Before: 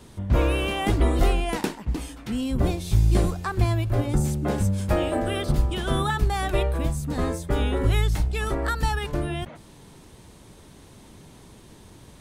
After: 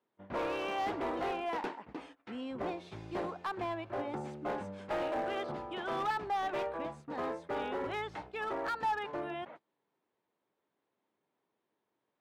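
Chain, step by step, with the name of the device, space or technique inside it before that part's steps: walkie-talkie (band-pass 400–2200 Hz; hard clipper -26.5 dBFS, distortion -12 dB; gate -45 dBFS, range -23 dB); dynamic bell 880 Hz, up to +5 dB, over -46 dBFS, Q 3; trim -5.5 dB

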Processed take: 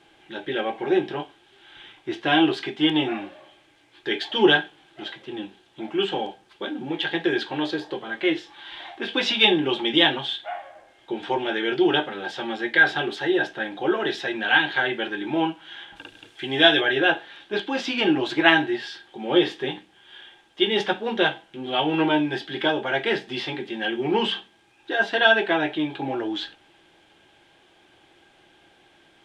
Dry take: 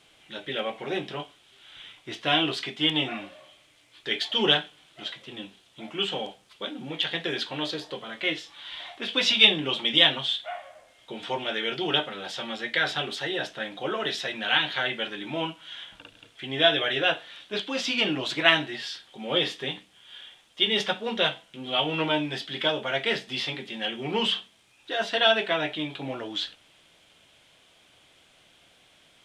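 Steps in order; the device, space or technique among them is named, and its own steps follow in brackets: 15.96–16.81 s: treble shelf 3 kHz +10.5 dB; inside a helmet (treble shelf 4.9 kHz -10 dB; small resonant body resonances 350/820/1600 Hz, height 13 dB, ringing for 50 ms); trim +1.5 dB

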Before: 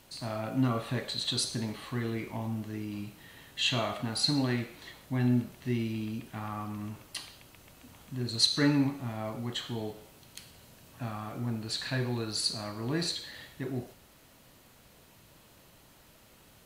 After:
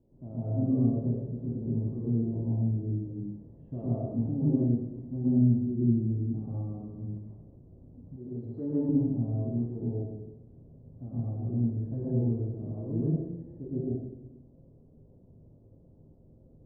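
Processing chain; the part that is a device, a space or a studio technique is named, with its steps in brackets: next room (low-pass 480 Hz 24 dB/octave; reverberation RT60 0.90 s, pre-delay 98 ms, DRR -6.5 dB); 8.16–8.89 s: tone controls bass -11 dB, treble +13 dB; trim -4 dB

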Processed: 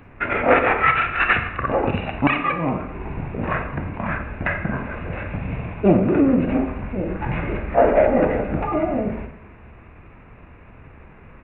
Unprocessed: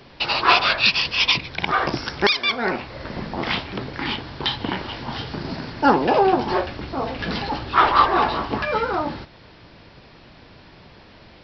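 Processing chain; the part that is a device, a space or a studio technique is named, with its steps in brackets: monster voice (pitch shift -6 st; formant shift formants -5.5 st; bass shelf 100 Hz +5 dB; reverberation RT60 0.85 s, pre-delay 30 ms, DRR 6.5 dB)

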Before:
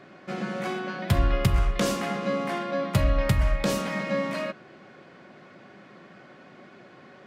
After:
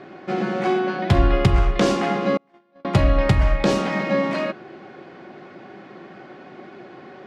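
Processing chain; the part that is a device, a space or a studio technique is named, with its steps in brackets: inside a cardboard box (low-pass 5.6 kHz 12 dB/octave; small resonant body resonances 360/770 Hz, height 8 dB, ringing for 25 ms); 2.37–2.85 s: gate -20 dBFS, range -39 dB; trim +5 dB

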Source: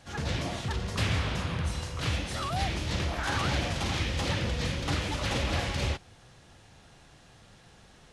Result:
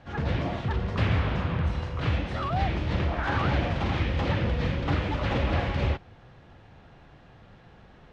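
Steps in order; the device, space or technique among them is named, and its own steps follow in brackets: phone in a pocket (low-pass 3.2 kHz 12 dB/octave; treble shelf 2.5 kHz -8.5 dB); trim +4.5 dB

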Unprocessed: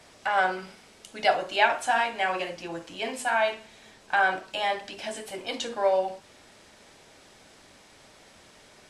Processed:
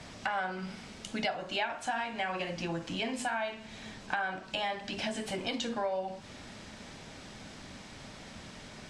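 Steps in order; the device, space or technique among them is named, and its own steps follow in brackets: jukebox (low-pass 7.4 kHz 12 dB/octave; resonant low shelf 290 Hz +6.5 dB, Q 1.5; compression 5:1, threshold -37 dBFS, peak gain reduction 19 dB); trim +5 dB

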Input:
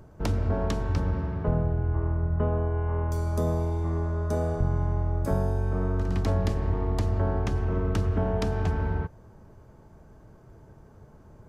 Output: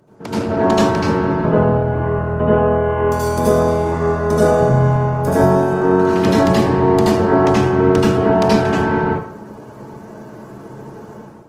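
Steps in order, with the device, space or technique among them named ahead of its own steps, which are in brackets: far-field microphone of a smart speaker (reverberation RT60 0.55 s, pre-delay 74 ms, DRR -7.5 dB; high-pass 140 Hz 24 dB/octave; level rider gain up to 12.5 dB; Opus 16 kbps 48 kHz)

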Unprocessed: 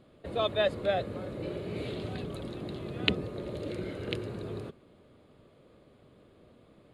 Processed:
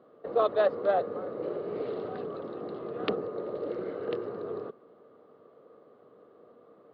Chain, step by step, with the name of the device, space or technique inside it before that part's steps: distance through air 290 m; full-range speaker at full volume (loudspeaker Doppler distortion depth 0.3 ms; cabinet simulation 250–6600 Hz, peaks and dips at 460 Hz +10 dB, 730 Hz +5 dB, 1.2 kHz +10 dB, 2.4 kHz -10 dB, 3.4 kHz -5 dB)

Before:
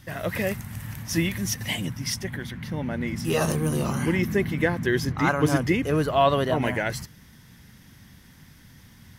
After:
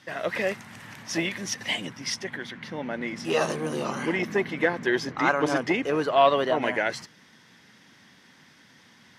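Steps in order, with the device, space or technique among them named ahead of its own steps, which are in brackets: public-address speaker with an overloaded transformer (transformer saturation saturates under 480 Hz; band-pass 320–5600 Hz); trim +2 dB

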